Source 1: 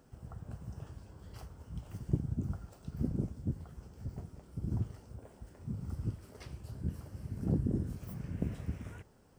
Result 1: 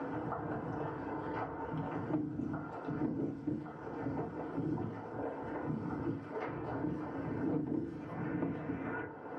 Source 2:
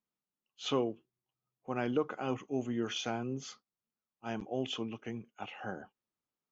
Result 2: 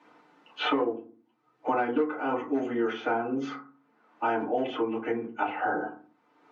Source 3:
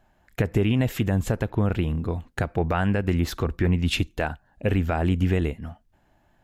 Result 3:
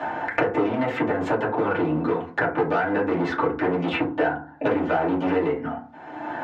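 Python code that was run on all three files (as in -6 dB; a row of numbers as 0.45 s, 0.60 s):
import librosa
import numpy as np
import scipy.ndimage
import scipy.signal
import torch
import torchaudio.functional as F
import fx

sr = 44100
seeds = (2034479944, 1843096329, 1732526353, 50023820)

y = np.clip(10.0 ** (24.0 / 20.0) * x, -1.0, 1.0) / 10.0 ** (24.0 / 20.0)
y = fx.bandpass_edges(y, sr, low_hz=420.0, high_hz=2200.0)
y = fx.rev_fdn(y, sr, rt60_s=0.33, lf_ratio=1.5, hf_ratio=0.4, size_ms=20.0, drr_db=-7.5)
y = fx.band_squash(y, sr, depth_pct=100)
y = y * 10.0 ** (2.0 / 20.0)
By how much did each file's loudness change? +0.5 LU, +7.0 LU, +1.0 LU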